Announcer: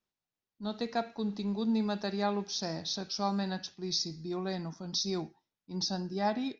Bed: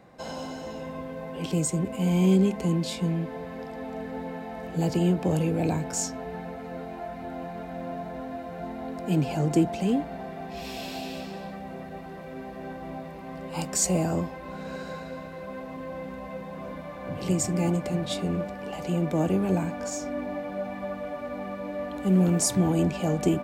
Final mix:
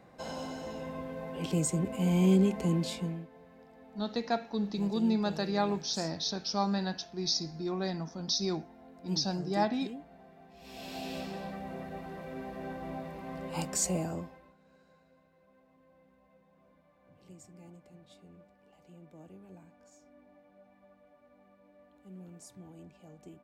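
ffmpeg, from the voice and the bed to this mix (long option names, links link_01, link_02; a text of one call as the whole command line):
ffmpeg -i stem1.wav -i stem2.wav -filter_complex "[0:a]adelay=3350,volume=1.5dB[link_01];[1:a]volume=12.5dB,afade=type=out:start_time=2.84:duration=0.44:silence=0.177828,afade=type=in:start_time=10.59:duration=0.58:silence=0.158489,afade=type=out:start_time=13.47:duration=1.08:silence=0.0562341[link_02];[link_01][link_02]amix=inputs=2:normalize=0" out.wav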